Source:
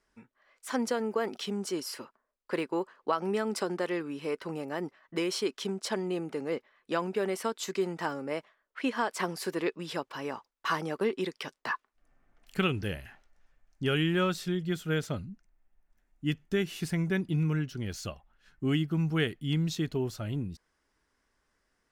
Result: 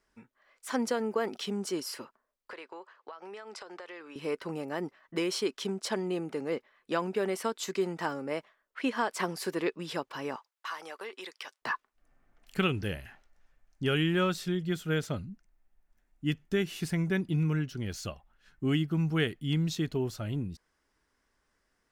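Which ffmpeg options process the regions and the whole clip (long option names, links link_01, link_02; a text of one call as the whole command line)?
ffmpeg -i in.wav -filter_complex "[0:a]asettb=1/sr,asplit=3[link_01][link_02][link_03];[link_01]atrim=end=2.524[link_04];[link_02]atrim=start=2.52:end=4.16,asetpts=PTS-STARTPTS,afade=type=in:duration=0.004:curve=qsin,afade=type=out:start_time=1.636:duration=0.004:curve=qsin,highpass=600,lowpass=5800,acompressor=threshold=-40dB:ratio=12:attack=3.2:release=140:knee=1:detection=peak[link_05];[link_03]atrim=start=4.156[link_06];[link_04][link_05]acrossfade=duration=0.004:curve1=hsin:curve2=qsin[link_07];[link_07][link_06]acrossfade=duration=0.004:curve1=qsin:curve2=hsin,asettb=1/sr,asplit=3[link_08][link_09][link_10];[link_08]atrim=end=10.364[link_11];[link_09]atrim=start=10.36:end=11.62,asetpts=PTS-STARTPTS,afade=type=in:duration=0.004:curve=qsin,afade=type=out:start_time=1.256:duration=0.004:curve=qsin,highpass=760,acompressor=threshold=-39dB:ratio=2:attack=3.2:release=140:knee=1:detection=peak[link_12];[link_10]atrim=start=11.616[link_13];[link_11][link_12]acrossfade=duration=0.004:curve1=hsin:curve2=qsin[link_14];[link_14][link_13]acrossfade=duration=0.004:curve1=qsin:curve2=hsin" out.wav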